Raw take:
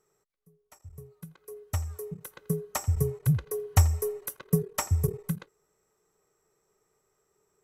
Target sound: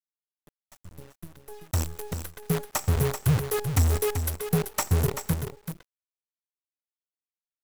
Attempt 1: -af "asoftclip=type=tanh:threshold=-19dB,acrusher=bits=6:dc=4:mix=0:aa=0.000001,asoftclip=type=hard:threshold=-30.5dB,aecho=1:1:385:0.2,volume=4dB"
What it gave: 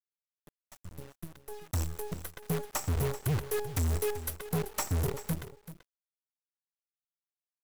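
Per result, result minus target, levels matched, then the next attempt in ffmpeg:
hard clipping: distortion +14 dB; echo-to-direct −6 dB
-af "asoftclip=type=tanh:threshold=-19dB,acrusher=bits=6:dc=4:mix=0:aa=0.000001,asoftclip=type=hard:threshold=-20dB,aecho=1:1:385:0.2,volume=4dB"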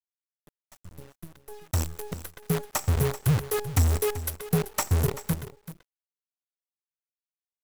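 echo-to-direct −6 dB
-af "asoftclip=type=tanh:threshold=-19dB,acrusher=bits=6:dc=4:mix=0:aa=0.000001,asoftclip=type=hard:threshold=-20dB,aecho=1:1:385:0.398,volume=4dB"

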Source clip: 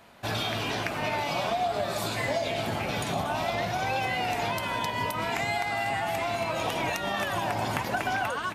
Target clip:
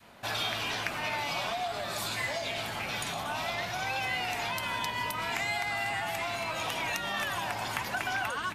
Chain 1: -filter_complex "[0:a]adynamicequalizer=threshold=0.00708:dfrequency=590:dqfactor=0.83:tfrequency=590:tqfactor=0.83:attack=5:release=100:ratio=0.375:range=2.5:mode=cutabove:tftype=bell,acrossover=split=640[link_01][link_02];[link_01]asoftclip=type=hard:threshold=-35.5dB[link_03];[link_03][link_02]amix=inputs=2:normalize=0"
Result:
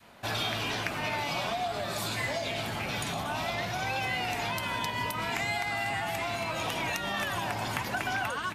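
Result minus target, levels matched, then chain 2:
hard clipping: distortion −5 dB
-filter_complex "[0:a]adynamicequalizer=threshold=0.00708:dfrequency=590:dqfactor=0.83:tfrequency=590:tqfactor=0.83:attack=5:release=100:ratio=0.375:range=2.5:mode=cutabove:tftype=bell,acrossover=split=640[link_01][link_02];[link_01]asoftclip=type=hard:threshold=-43dB[link_03];[link_03][link_02]amix=inputs=2:normalize=0"

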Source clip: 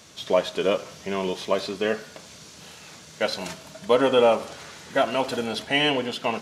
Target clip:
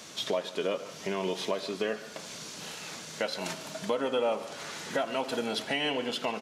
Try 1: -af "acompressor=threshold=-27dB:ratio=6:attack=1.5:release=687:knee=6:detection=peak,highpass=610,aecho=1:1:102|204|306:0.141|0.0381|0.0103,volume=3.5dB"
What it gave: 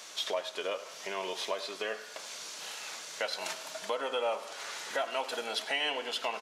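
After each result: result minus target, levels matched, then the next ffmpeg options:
125 Hz band −17.0 dB; echo 43 ms early
-af "acompressor=threshold=-27dB:ratio=6:attack=1.5:release=687:knee=6:detection=peak,highpass=160,aecho=1:1:102|204|306:0.141|0.0381|0.0103,volume=3.5dB"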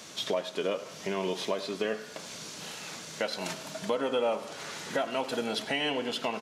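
echo 43 ms early
-af "acompressor=threshold=-27dB:ratio=6:attack=1.5:release=687:knee=6:detection=peak,highpass=160,aecho=1:1:145|290|435:0.141|0.0381|0.0103,volume=3.5dB"

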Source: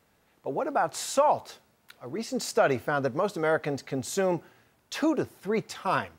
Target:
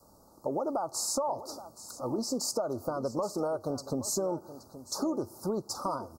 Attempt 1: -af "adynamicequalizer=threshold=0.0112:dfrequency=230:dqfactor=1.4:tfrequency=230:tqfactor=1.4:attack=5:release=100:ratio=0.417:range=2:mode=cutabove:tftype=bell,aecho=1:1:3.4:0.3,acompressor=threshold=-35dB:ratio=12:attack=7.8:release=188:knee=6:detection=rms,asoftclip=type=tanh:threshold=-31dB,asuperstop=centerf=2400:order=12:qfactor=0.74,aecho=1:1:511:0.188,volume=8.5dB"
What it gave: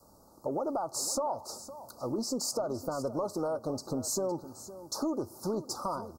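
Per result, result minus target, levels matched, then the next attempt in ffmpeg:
echo 313 ms early; soft clipping: distortion +11 dB
-af "adynamicequalizer=threshold=0.0112:dfrequency=230:dqfactor=1.4:tfrequency=230:tqfactor=1.4:attack=5:release=100:ratio=0.417:range=2:mode=cutabove:tftype=bell,aecho=1:1:3.4:0.3,acompressor=threshold=-35dB:ratio=12:attack=7.8:release=188:knee=6:detection=rms,asoftclip=type=tanh:threshold=-31dB,asuperstop=centerf=2400:order=12:qfactor=0.74,aecho=1:1:824:0.188,volume=8.5dB"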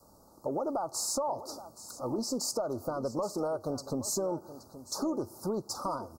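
soft clipping: distortion +11 dB
-af "adynamicequalizer=threshold=0.0112:dfrequency=230:dqfactor=1.4:tfrequency=230:tqfactor=1.4:attack=5:release=100:ratio=0.417:range=2:mode=cutabove:tftype=bell,aecho=1:1:3.4:0.3,acompressor=threshold=-35dB:ratio=12:attack=7.8:release=188:knee=6:detection=rms,asoftclip=type=tanh:threshold=-24dB,asuperstop=centerf=2400:order=12:qfactor=0.74,aecho=1:1:824:0.188,volume=8.5dB"

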